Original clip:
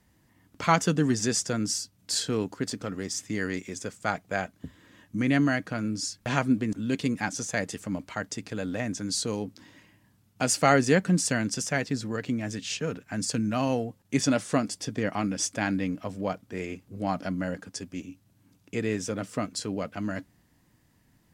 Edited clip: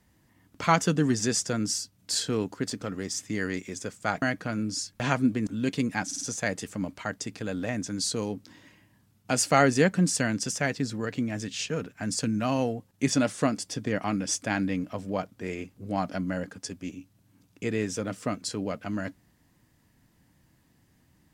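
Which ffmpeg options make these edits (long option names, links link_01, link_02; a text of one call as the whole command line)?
ffmpeg -i in.wav -filter_complex "[0:a]asplit=5[link_01][link_02][link_03][link_04][link_05];[link_01]atrim=end=4.222[link_06];[link_02]atrim=start=5.478:end=7.372[link_07];[link_03]atrim=start=7.318:end=7.372[link_08];[link_04]atrim=start=7.318:end=7.372[link_09];[link_05]atrim=start=7.318[link_10];[link_06][link_07]acrossfade=duration=0.004:curve1=hsin:curve2=hsin[link_11];[link_11][link_08]acrossfade=duration=0.004:curve1=hsin:curve2=hsin[link_12];[link_12][link_09]acrossfade=duration=0.004:curve1=hsin:curve2=hsin[link_13];[link_13][link_10]acrossfade=duration=0.004:curve1=hsin:curve2=hsin" out.wav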